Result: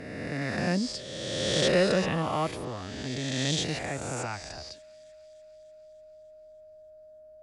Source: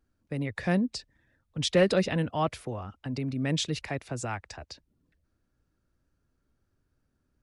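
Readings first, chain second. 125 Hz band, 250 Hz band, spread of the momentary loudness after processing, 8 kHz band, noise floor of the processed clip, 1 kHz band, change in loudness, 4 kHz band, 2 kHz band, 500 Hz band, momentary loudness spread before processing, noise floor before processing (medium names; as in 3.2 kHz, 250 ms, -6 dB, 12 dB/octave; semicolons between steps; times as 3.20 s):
-1.0 dB, -1.0 dB, 14 LU, +4.5 dB, -51 dBFS, +1.5 dB, +0.5 dB, +4.0 dB, +3.0 dB, +1.0 dB, 17 LU, -76 dBFS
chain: reverse spectral sustain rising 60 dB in 1.97 s; whistle 620 Hz -45 dBFS; feedback echo behind a high-pass 297 ms, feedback 65%, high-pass 2 kHz, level -23.5 dB; trim -3.5 dB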